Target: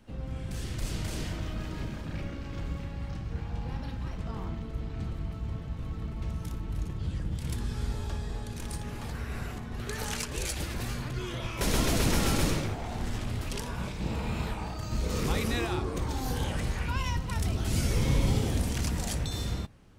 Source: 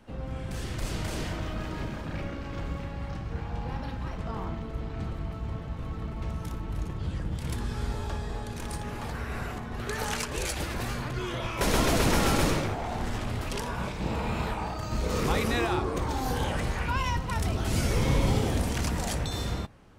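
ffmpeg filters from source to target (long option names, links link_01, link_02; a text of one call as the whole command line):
ffmpeg -i in.wav -af "equalizer=frequency=890:width=0.44:gain=-6.5" out.wav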